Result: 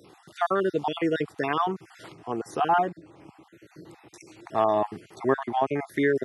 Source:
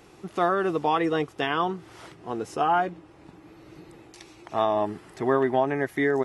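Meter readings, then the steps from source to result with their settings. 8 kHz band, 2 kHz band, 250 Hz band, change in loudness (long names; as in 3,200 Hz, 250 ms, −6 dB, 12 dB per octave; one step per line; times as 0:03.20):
−0.5 dB, −2.0 dB, −1.0 dB, −1.0 dB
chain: time-frequency cells dropped at random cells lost 36%
high-pass filter 85 Hz 24 dB per octave
level +1 dB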